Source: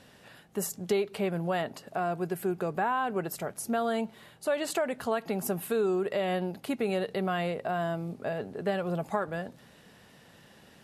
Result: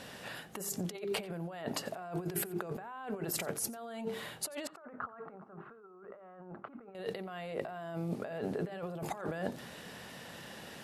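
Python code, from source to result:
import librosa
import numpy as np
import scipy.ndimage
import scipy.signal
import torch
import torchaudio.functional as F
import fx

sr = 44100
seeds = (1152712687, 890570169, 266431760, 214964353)

y = fx.low_shelf(x, sr, hz=130.0, db=-6.5)
y = fx.hum_notches(y, sr, base_hz=50, count=9)
y = fx.over_compress(y, sr, threshold_db=-41.0, ratio=-1.0)
y = fx.ladder_lowpass(y, sr, hz=1400.0, resonance_pct=70, at=(4.67, 6.95))
y = y + 10.0 ** (-21.0 / 20.0) * np.pad(y, (int(89 * sr / 1000.0), 0))[:len(y)]
y = F.gain(torch.from_numpy(y), 1.0).numpy()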